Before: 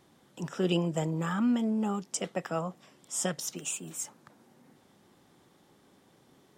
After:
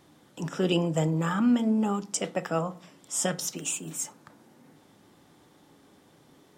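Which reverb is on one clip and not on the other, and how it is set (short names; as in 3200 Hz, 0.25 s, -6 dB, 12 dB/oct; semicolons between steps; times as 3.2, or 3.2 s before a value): FDN reverb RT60 0.42 s, low-frequency decay 1.55×, high-frequency decay 0.55×, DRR 11.5 dB; gain +3.5 dB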